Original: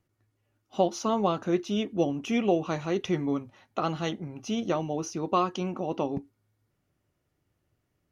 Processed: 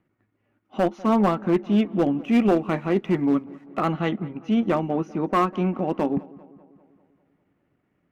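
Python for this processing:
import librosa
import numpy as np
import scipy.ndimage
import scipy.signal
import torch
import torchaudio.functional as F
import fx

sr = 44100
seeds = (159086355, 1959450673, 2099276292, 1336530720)

p1 = fx.curve_eq(x, sr, hz=(100.0, 200.0, 450.0, 2200.0, 5300.0), db=(0, 14, 8, 10, -10))
p2 = fx.cheby_harmonics(p1, sr, harmonics=(5,), levels_db=(-32,), full_scale_db=-10.0)
p3 = fx.backlash(p2, sr, play_db=-50.5, at=(2.23, 3.85))
p4 = fx.transient(p3, sr, attack_db=-3, sustain_db=-8)
p5 = p4 + fx.echo_filtered(p4, sr, ms=197, feedback_pct=58, hz=2900.0, wet_db=-21, dry=0)
y = p5 * librosa.db_to_amplitude(-2.5)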